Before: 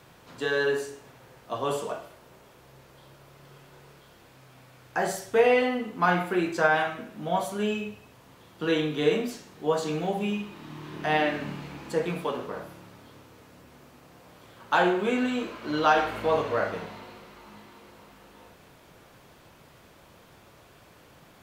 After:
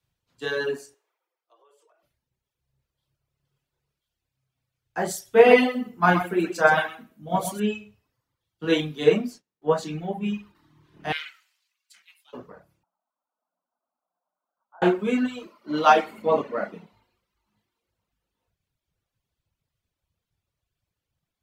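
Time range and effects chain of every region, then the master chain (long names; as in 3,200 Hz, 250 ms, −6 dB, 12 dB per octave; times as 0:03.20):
0:00.94–0:02.03: Chebyshev high-pass with heavy ripple 320 Hz, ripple 3 dB + downward compressor, threshold −39 dBFS
0:05.25–0:07.60: high-shelf EQ 9,100 Hz +7.5 dB + single-tap delay 128 ms −5 dB
0:09.04–0:10.55: noise gate −45 dBFS, range −19 dB + high-shelf EQ 8,100 Hz −3 dB
0:11.12–0:12.33: high-pass filter 1,300 Hz 24 dB per octave + ring modulation 270 Hz
0:12.83–0:14.82: Chebyshev band-pass filter 180–1,500 Hz, order 5 + low shelf with overshoot 540 Hz −7.5 dB, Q 3 + multiband upward and downward compressor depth 100%
0:15.45–0:16.93: low shelf with overshoot 130 Hz −12 dB, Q 1.5 + notch filter 1,600 Hz, Q 9.9
whole clip: reverb reduction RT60 1.3 s; dynamic equaliser 210 Hz, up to +5 dB, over −45 dBFS, Q 1.3; multiband upward and downward expander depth 100%; level −2 dB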